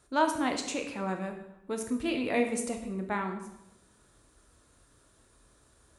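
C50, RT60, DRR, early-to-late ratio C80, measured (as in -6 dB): 7.5 dB, 0.90 s, 4.5 dB, 10.0 dB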